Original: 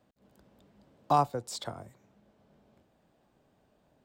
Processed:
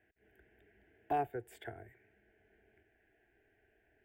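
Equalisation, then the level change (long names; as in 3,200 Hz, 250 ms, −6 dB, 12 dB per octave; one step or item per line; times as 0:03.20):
drawn EQ curve 170 Hz 0 dB, 250 Hz −11 dB, 400 Hz +3 dB, 680 Hz −2 dB, 1,000 Hz −18 dB, 1,600 Hz +11 dB, 3,800 Hz −1 dB, 5,500 Hz −25 dB, 13,000 Hz −7 dB
dynamic equaliser 2,200 Hz, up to −7 dB, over −56 dBFS, Q 0.98
phaser with its sweep stopped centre 820 Hz, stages 8
0.0 dB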